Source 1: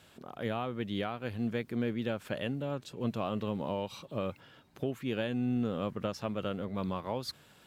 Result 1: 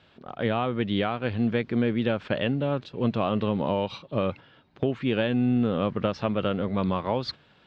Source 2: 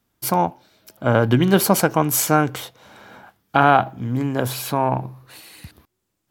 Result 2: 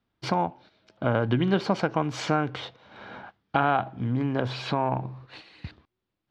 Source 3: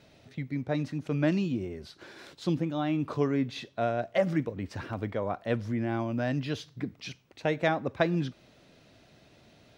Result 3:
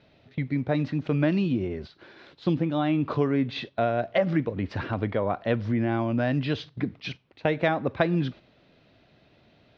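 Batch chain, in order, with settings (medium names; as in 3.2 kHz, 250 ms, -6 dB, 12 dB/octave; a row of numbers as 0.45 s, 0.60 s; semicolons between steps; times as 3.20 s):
low-pass 4.3 kHz 24 dB/octave; gate -45 dBFS, range -8 dB; compression 2:1, threshold -29 dBFS; normalise loudness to -27 LUFS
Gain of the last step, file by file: +9.5 dB, +1.5 dB, +7.0 dB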